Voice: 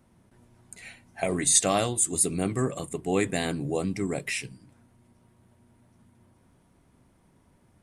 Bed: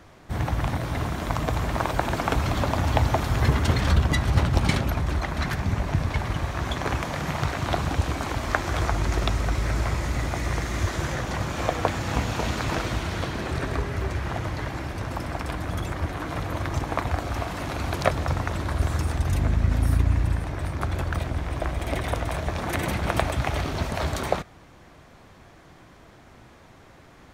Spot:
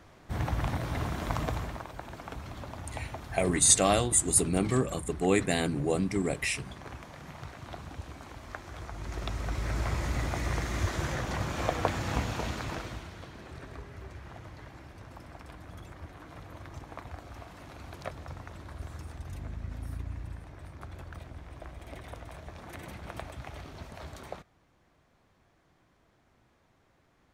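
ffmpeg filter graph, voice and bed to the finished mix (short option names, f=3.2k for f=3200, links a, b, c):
-filter_complex "[0:a]adelay=2150,volume=0dB[a];[1:a]volume=8dB,afade=t=out:st=1.41:d=0.43:silence=0.237137,afade=t=in:st=8.9:d=1.14:silence=0.223872,afade=t=out:st=12.07:d=1.07:silence=0.237137[b];[a][b]amix=inputs=2:normalize=0"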